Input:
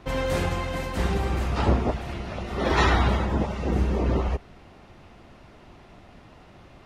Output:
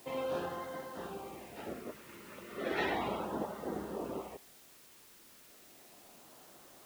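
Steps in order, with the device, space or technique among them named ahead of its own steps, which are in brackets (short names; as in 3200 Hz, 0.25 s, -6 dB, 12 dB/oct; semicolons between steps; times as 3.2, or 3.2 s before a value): shortwave radio (BPF 290–2900 Hz; tremolo 0.31 Hz, depth 59%; LFO notch sine 0.34 Hz 700–2500 Hz; white noise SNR 18 dB); gain -7 dB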